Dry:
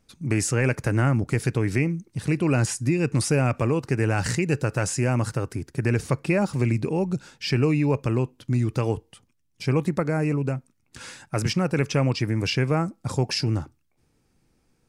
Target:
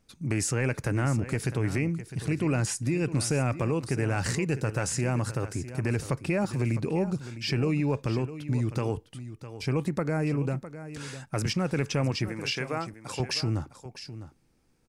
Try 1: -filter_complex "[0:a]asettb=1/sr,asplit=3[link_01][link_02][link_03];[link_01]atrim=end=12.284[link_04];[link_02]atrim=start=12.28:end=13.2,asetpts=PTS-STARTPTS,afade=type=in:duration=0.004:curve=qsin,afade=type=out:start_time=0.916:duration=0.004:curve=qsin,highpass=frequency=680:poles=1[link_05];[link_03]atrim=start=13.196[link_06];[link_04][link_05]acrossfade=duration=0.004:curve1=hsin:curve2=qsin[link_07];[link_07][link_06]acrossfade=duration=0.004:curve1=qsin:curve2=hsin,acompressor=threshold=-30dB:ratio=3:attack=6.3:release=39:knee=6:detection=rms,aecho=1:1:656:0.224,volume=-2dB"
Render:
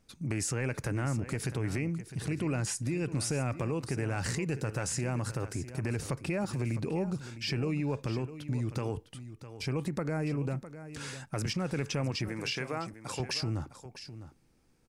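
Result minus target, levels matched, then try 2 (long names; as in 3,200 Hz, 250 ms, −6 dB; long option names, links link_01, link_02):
downward compressor: peak gain reduction +5.5 dB
-filter_complex "[0:a]asettb=1/sr,asplit=3[link_01][link_02][link_03];[link_01]atrim=end=12.284[link_04];[link_02]atrim=start=12.28:end=13.2,asetpts=PTS-STARTPTS,afade=type=in:duration=0.004:curve=qsin,afade=type=out:start_time=0.916:duration=0.004:curve=qsin,highpass=frequency=680:poles=1[link_05];[link_03]atrim=start=13.196[link_06];[link_04][link_05]acrossfade=duration=0.004:curve1=hsin:curve2=qsin[link_07];[link_07][link_06]acrossfade=duration=0.004:curve1=qsin:curve2=hsin,acompressor=threshold=-21.5dB:ratio=3:attack=6.3:release=39:knee=6:detection=rms,aecho=1:1:656:0.224,volume=-2dB"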